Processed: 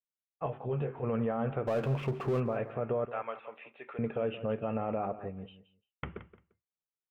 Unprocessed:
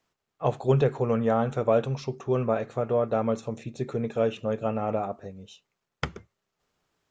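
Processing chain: steep low-pass 3100 Hz 72 dB/oct; expander -46 dBFS; 3.05–3.99 HPF 1100 Hz 12 dB/oct; in parallel at +1 dB: compressor, threshold -34 dBFS, peak gain reduction 16.5 dB; on the sum: limiter -17.5 dBFS, peak gain reduction 9.5 dB; 1.67–2.4 power-law curve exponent 0.7; on a send: feedback echo 0.173 s, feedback 18%, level -14.5 dB; 0.46–1.02 on the sum: detuned doubles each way 11 cents -> 26 cents; gain -5.5 dB

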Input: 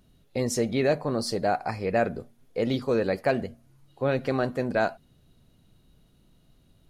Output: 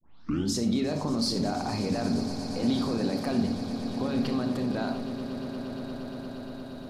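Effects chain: tape start at the beginning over 0.56 s; in parallel at +1.5 dB: negative-ratio compressor -29 dBFS; on the sum: limiter -22 dBFS, peak gain reduction 13.5 dB; ten-band EQ 250 Hz +10 dB, 500 Hz -4 dB, 1000 Hz +6 dB, 2000 Hz -5 dB, 4000 Hz +10 dB; swelling echo 0.117 s, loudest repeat 8, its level -16.5 dB; on a send at -7 dB: reverb RT60 0.55 s, pre-delay 34 ms; on the sum: gain -4.5 dB

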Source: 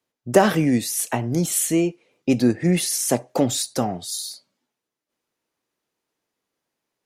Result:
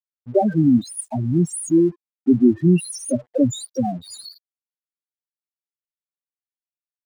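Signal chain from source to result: opening faded in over 0.66 s; loudest bins only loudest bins 4; crossover distortion -55 dBFS; gain +5 dB

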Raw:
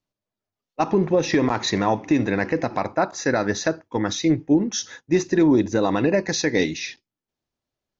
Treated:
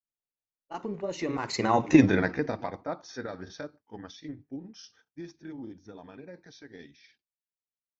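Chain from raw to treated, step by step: Doppler pass-by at 1.97, 29 m/s, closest 4.1 m; grains, spray 17 ms, pitch spread up and down by 0 st; gain +4 dB

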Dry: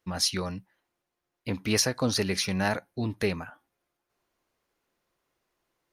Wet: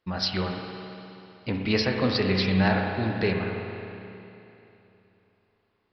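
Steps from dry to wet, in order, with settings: downsampling 11025 Hz; spring tank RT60 3 s, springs 32/53 ms, chirp 80 ms, DRR 1.5 dB; gain +1.5 dB

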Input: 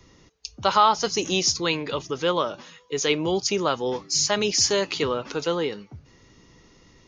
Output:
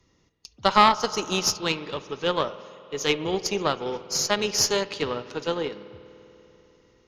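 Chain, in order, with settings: spring tank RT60 3.8 s, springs 49 ms, chirp 25 ms, DRR 8.5 dB; added harmonics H 2 -9 dB, 5 -32 dB, 7 -31 dB, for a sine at -5.5 dBFS; upward expander 1.5:1, over -36 dBFS; gain +1 dB

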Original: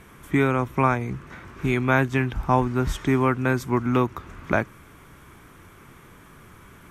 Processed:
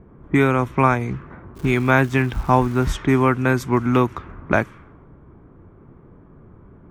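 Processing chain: low-pass opened by the level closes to 510 Hz, open at -19 dBFS; 1.55–2.89 crackle 550/s -39 dBFS; gain +4 dB

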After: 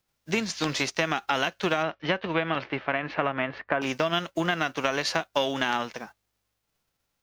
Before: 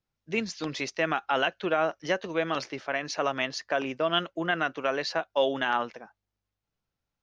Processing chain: spectral whitening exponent 0.6; 1.82–3.81 LPF 3700 Hz -> 2100 Hz 24 dB/oct; compressor, threshold -29 dBFS, peak gain reduction 10.5 dB; gain +7 dB

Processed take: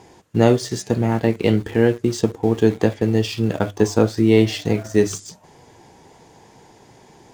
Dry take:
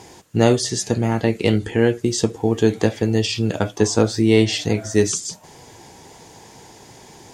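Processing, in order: high shelf 3200 Hz -9 dB; notches 50/100 Hz; in parallel at -5 dB: sample gate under -28.5 dBFS; on the sum: gain -3 dB

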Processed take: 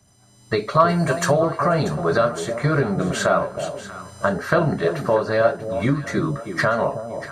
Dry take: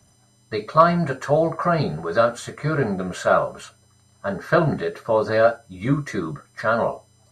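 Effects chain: recorder AGC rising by 21 dB/s; 0.88–1.32 high shelf 5600 Hz -> 3800 Hz +12 dB; echo with dull and thin repeats by turns 0.319 s, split 830 Hz, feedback 52%, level -8 dB; gain -1.5 dB

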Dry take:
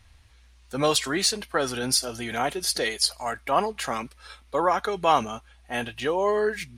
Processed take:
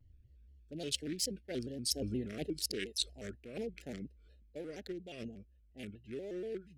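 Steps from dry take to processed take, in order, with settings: Wiener smoothing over 41 samples; Doppler pass-by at 2.06, 13 m/s, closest 2.1 m; reverse; compressor 12:1, threshold -48 dBFS, peak gain reduction 25 dB; reverse; Butterworth band-stop 1000 Hz, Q 0.56; shaped vibrato square 4.2 Hz, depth 160 cents; gain +16 dB

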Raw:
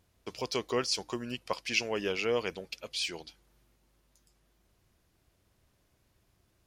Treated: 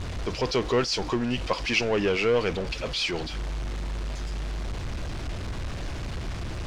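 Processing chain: zero-crossing step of -37 dBFS; low shelf 82 Hz +10.5 dB; in parallel at -10 dB: wavefolder -28.5 dBFS; on the sum: air absorption 110 m; gain +5 dB

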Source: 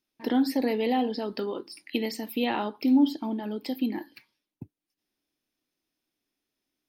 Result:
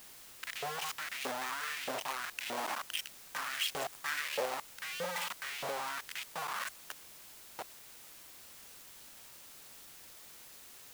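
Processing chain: speed glide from 56% -> 70%; low shelf 160 Hz +9 dB; reverse; compressor 6:1, threshold -34 dBFS, peak gain reduction 19.5 dB; reverse; companded quantiser 2-bit; LFO high-pass saw up 1.6 Hz 510–2800 Hz; in parallel at -11 dB: requantised 6-bit, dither triangular; on the sum: gain -6.5 dB

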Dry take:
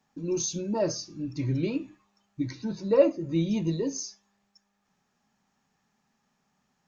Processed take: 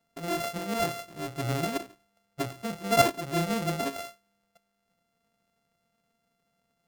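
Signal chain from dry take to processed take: sample sorter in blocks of 64 samples; gain -2 dB

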